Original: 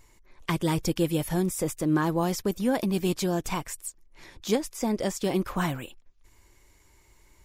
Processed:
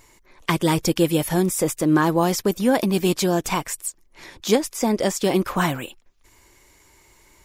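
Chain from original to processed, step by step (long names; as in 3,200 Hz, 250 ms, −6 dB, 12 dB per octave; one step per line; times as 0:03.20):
low-shelf EQ 120 Hz −10 dB
level +8 dB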